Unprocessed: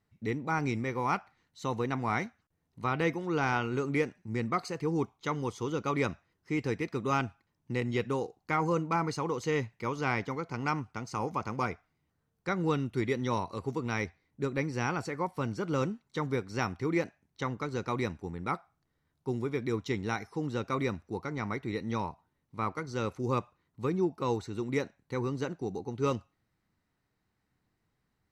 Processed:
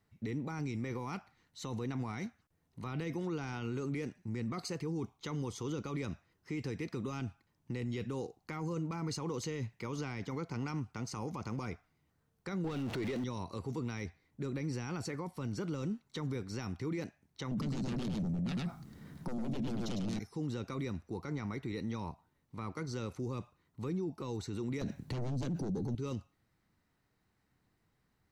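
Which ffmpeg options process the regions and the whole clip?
-filter_complex "[0:a]asettb=1/sr,asplit=3[a][b][c];[a]atrim=end=12.644[d];[b]atrim=start=12.64:end=13.24,asetpts=PTS-STARTPTS,afade=t=in:d=0.004:c=qsin,afade=t=out:st=0.596:d=0.004:c=qsin,aeval=exprs='val(0)+0.5*0.00891*sgn(val(0))':c=same,equalizer=f=740:w=2.6:g=6.5,asplit=2[e][f];[f]highpass=f=720:p=1,volume=20dB,asoftclip=type=tanh:threshold=-16dB[g];[e][g]amix=inputs=2:normalize=0,lowpass=f=1.7k:p=1,volume=-6dB[h];[c]atrim=start=13.236[i];[d][h]acrossfade=d=0.004:c1=hsin:c2=qsin[j];[j][i]acrossfade=d=0.004:c1=qsin:c2=hsin,asettb=1/sr,asplit=3[k][l][m];[k]atrim=end=17.514[n];[l]atrim=start=17.51:end=20.19,asetpts=PTS-STARTPTS,afade=t=in:d=0.004:c=qsin,afade=t=out:st=2.676:d=0.004:c=qsin,equalizer=f=200:w=1.2:g=14.5,aeval=exprs='0.251*sin(PI/2*4.47*val(0)/0.251)':c=same,aecho=1:1:104:0.668,atrim=end_sample=118188[o];[m]atrim=start=20.186[p];[n][o]acrossfade=d=0.004:c1=hsin:c2=qsin[q];[q][p]acrossfade=d=0.004:c1=qsin:c2=hsin,asettb=1/sr,asplit=3[r][s][t];[r]atrim=end=24.814[u];[s]atrim=start=24.81:end=25.95,asetpts=PTS-STARTPTS,afade=t=in:d=0.004:c=qsin,afade=t=out:st=1.136:d=0.004:c=qsin,equalizer=f=170:w=0.51:g=11,aeval=exprs='0.2*sin(PI/2*3.16*val(0)/0.2)':c=same[v];[t]atrim=start=25.946[w];[u][v]acrossfade=d=0.004:c1=hsin:c2=qsin[x];[x][w]acrossfade=d=0.004:c1=qsin:c2=hsin,acrossover=split=360|3000[y][z][aa];[z]acompressor=threshold=-45dB:ratio=2[ab];[y][ab][aa]amix=inputs=3:normalize=0,alimiter=level_in=8dB:limit=-24dB:level=0:latency=1:release=19,volume=-8dB,volume=2dB"

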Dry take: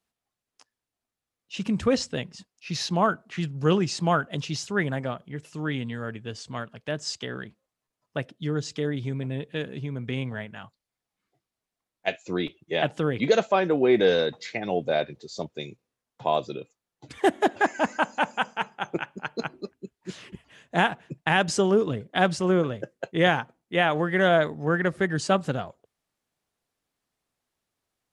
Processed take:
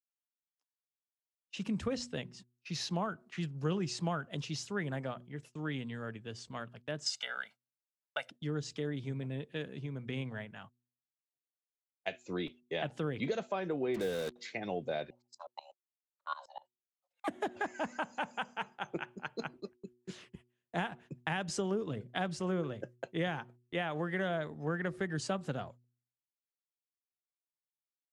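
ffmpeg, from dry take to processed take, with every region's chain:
-filter_complex "[0:a]asettb=1/sr,asplit=3[a][b][c];[a]atrim=end=7.064[d];[b]atrim=start=7.06:end=8.3,asetpts=PTS-STARTPTS,afade=t=in:d=0.004:c=qsin,afade=t=out:st=1.236:d=0.004:c=qsin,highpass=940,aecho=1:1:1.4:0.99,atrim=end_sample=54684,acontrast=65[e];[c]atrim=start=8.296[f];[d][e]acrossfade=d=0.004:c1=hsin:c2=qsin[g];[g][f]acrossfade=d=0.004:c1=qsin:c2=hsin,asettb=1/sr,asplit=3[h][i][j];[h]atrim=end=13.944[k];[i]atrim=start=13.94:end=14.36,asetpts=PTS-STARTPTS,afade=t=in:d=0.004:c=qsin,afade=t=out:st=0.416:d=0.004:c=qsin,highshelf=f=3.8k:g=-7.5,acrusher=bits=4:mix=0:aa=0.5[l];[j]atrim=start=14.356[m];[k][l]acrossfade=d=0.004:c1=hsin:c2=qsin[n];[n][m]acrossfade=d=0.004:c1=qsin:c2=hsin,asettb=1/sr,asplit=3[o][p][q];[o]atrim=end=15.104[r];[p]atrim=start=15.1:end=17.28,asetpts=PTS-STARTPTS,afade=t=in:d=0.004:c=qsin,afade=t=out:st=2.176:d=0.004:c=qsin,afreqshift=420,aeval=exprs='val(0)*pow(10,-23*if(lt(mod(-8.1*n/s,1),2*abs(-8.1)/1000),1-mod(-8.1*n/s,1)/(2*abs(-8.1)/1000),(mod(-8.1*n/s,1)-2*abs(-8.1)/1000)/(1-2*abs(-8.1)/1000))/20)':c=same[s];[q]atrim=start=17.276[t];[r][s]acrossfade=d=0.004:c1=hsin:c2=qsin[u];[u][t]acrossfade=d=0.004:c1=qsin:c2=hsin,agate=range=-28dB:threshold=-44dB:ratio=16:detection=peak,bandreject=f=121.8:t=h:w=4,bandreject=f=243.6:t=h:w=4,bandreject=f=365.4:t=h:w=4,acrossover=split=170[v][w];[w]acompressor=threshold=-24dB:ratio=5[x];[v][x]amix=inputs=2:normalize=0,volume=-8dB"

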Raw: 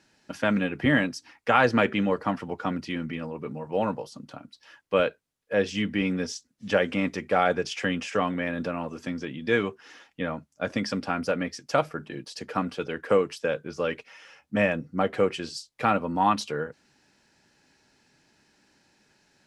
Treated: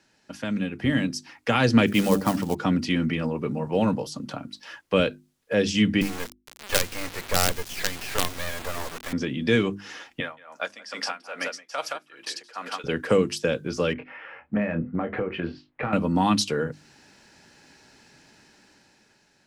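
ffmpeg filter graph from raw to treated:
-filter_complex "[0:a]asettb=1/sr,asplit=3[a][b][c];[a]atrim=end=1.864[d];[b]atrim=start=1.86:end=2.55,asetpts=PTS-STARTPTS,afade=t=in:d=0.004:c=qsin,afade=t=out:st=0.686:d=0.004:c=qsin,bandreject=f=95.97:t=h:w=4,bandreject=f=191.94:t=h:w=4,bandreject=f=287.91:t=h:w=4,bandreject=f=383.88:t=h:w=4,bandreject=f=479.85:t=h:w=4,bandreject=f=575.82:t=h:w=4,bandreject=f=671.79:t=h:w=4,bandreject=f=767.76:t=h:w=4,adynamicequalizer=threshold=0.0112:dfrequency=820:dqfactor=0.81:tfrequency=820:tqfactor=0.81:attack=5:release=100:ratio=0.375:range=2:mode=boostabove:tftype=bell,acrusher=bits=5:mode=log:mix=0:aa=0.000001[e];[c]atrim=start=2.546[f];[d][e]acrossfade=d=0.004:c1=hsin:c2=qsin[g];[g][f]acrossfade=d=0.004:c1=qsin:c2=hsin,asettb=1/sr,asplit=3[h][i][j];[h]atrim=end=6.014[k];[i]atrim=start=6.01:end=9.13,asetpts=PTS-STARTPTS,afade=t=in:d=0.004:c=qsin,afade=t=out:st=3.116:d=0.004:c=qsin,aeval=exprs='val(0)+0.5*0.0188*sgn(val(0))':c=same,highpass=590,lowpass=2k,acrusher=bits=4:dc=4:mix=0:aa=0.000001[l];[j]atrim=start=9.126[m];[k][l]acrossfade=d=0.004:c1=hsin:c2=qsin[n];[n][m]acrossfade=d=0.004:c1=qsin:c2=hsin,asettb=1/sr,asplit=3[o][p][q];[o]atrim=end=10.204[r];[p]atrim=start=10.2:end=12.84,asetpts=PTS-STARTPTS,afade=t=in:d=0.004:c=qsin,afade=t=out:st=2.636:d=0.004:c=qsin,highpass=770,aecho=1:1:171:0.531,atrim=end_sample=116424,aeval=exprs='val(0)*pow(10,-20*(0.5-0.5*cos(2*PI*2.4*n/s))/20)':c=same[s];[q]atrim=start=12.836[t];[r][s]acrossfade=d=0.004:c1=hsin:c2=qsin[u];[u][t]acrossfade=d=0.004:c1=qsin:c2=hsin,asettb=1/sr,asplit=3[v][w][x];[v]atrim=end=13.934[y];[w]atrim=start=13.93:end=15.93,asetpts=PTS-STARTPTS,afade=t=in:d=0.004:c=qsin,afade=t=out:st=1.996:d=0.004:c=qsin,lowpass=f=2.2k:w=0.5412,lowpass=f=2.2k:w=1.3066,acompressor=threshold=-30dB:ratio=5:attack=3.2:release=140:knee=1:detection=peak,asplit=2[z][aa];[aa]adelay=24,volume=-7dB[ab];[z][ab]amix=inputs=2:normalize=0,atrim=end_sample=88200[ac];[x]atrim=start=15.926[ad];[y][ac]acrossfade=d=0.004:c1=hsin:c2=qsin[ae];[ae][ad]acrossfade=d=0.004:c1=qsin:c2=hsin,acrossover=split=320|3000[af][ag][ah];[ag]acompressor=threshold=-44dB:ratio=2[ai];[af][ai][ah]amix=inputs=3:normalize=0,bandreject=f=50:t=h:w=6,bandreject=f=100:t=h:w=6,bandreject=f=150:t=h:w=6,bandreject=f=200:t=h:w=6,bandreject=f=250:t=h:w=6,bandreject=f=300:t=h:w=6,bandreject=f=350:t=h:w=6,dynaudnorm=f=270:g=9:m=10dB"

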